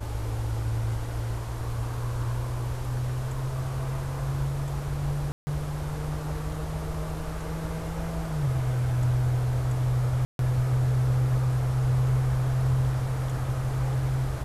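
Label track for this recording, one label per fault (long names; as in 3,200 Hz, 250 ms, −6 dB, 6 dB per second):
5.320000	5.470000	drop-out 150 ms
10.250000	10.390000	drop-out 142 ms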